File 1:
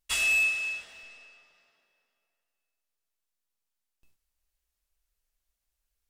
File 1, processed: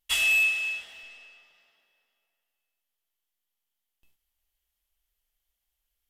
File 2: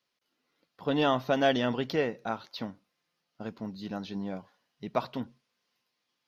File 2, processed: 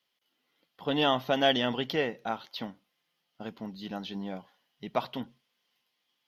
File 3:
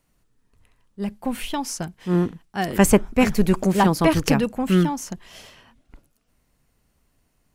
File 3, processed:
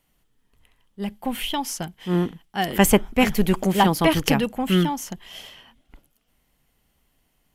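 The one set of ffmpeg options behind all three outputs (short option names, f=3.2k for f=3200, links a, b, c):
-af "equalizer=f=100:t=o:w=0.33:g=-7,equalizer=f=800:t=o:w=0.33:g=4,equalizer=f=2k:t=o:w=0.33:g=4,equalizer=f=3.15k:t=o:w=0.33:g=10,equalizer=f=12.5k:t=o:w=0.33:g=9,volume=-1.5dB"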